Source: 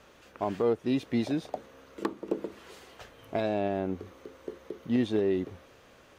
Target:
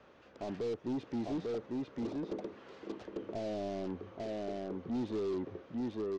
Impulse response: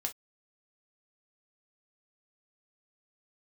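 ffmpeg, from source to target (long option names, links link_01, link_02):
-filter_complex "[0:a]highpass=frequency=100:poles=1,asplit=2[link_01][link_02];[link_02]aecho=0:1:846:0.631[link_03];[link_01][link_03]amix=inputs=2:normalize=0,asoftclip=type=tanh:threshold=-30dB,highshelf=frequency=2400:gain=-11,acrossover=split=550|790[link_04][link_05][link_06];[link_06]aeval=exprs='(mod(224*val(0)+1,2)-1)/224':channel_layout=same[link_07];[link_04][link_05][link_07]amix=inputs=3:normalize=0,lowpass=frequency=5800:width=0.5412,lowpass=frequency=5800:width=1.3066,volume=-1.5dB"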